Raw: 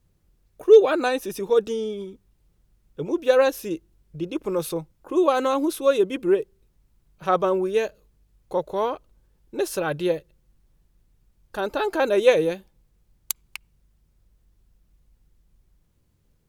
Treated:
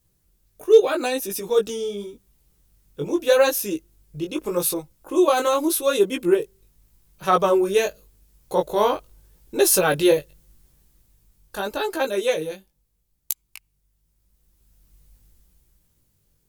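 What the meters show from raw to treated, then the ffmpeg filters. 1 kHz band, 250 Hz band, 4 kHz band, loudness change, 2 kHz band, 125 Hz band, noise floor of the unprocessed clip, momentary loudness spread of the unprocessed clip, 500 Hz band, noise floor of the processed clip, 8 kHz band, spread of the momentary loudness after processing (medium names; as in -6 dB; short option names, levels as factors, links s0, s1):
+2.5 dB, +1.5 dB, +5.5 dB, +1.5 dB, +2.0 dB, +1.5 dB, -66 dBFS, 16 LU, +0.5 dB, -69 dBFS, +11.5 dB, 15 LU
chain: -af "crystalizer=i=2.5:c=0,dynaudnorm=f=150:g=17:m=3.76,flanger=delay=15:depth=5.9:speed=0.83"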